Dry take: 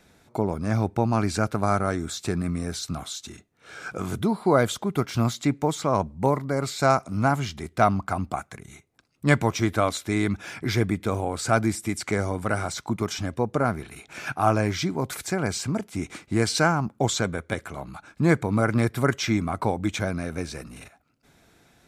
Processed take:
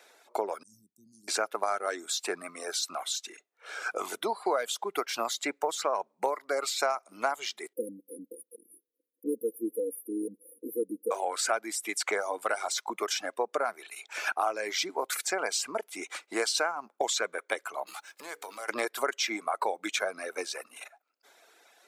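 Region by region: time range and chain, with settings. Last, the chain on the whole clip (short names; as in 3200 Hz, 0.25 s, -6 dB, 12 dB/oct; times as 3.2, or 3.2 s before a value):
0.63–1.28 inverse Chebyshev band-stop 600–2200 Hz, stop band 70 dB + high shelf 2700 Hz -9.5 dB + three-band expander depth 40%
7.73–11.11 brick-wall FIR band-stop 520–9400 Hz + comb 3.8 ms, depth 98%
17.86–18.68 spectral whitening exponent 0.6 + notches 60/120/180/240/300/360/420/480 Hz + compressor 5:1, threshold -36 dBFS
whole clip: reverb removal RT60 0.99 s; HPF 450 Hz 24 dB/oct; compressor 6:1, threshold -28 dBFS; gain +3 dB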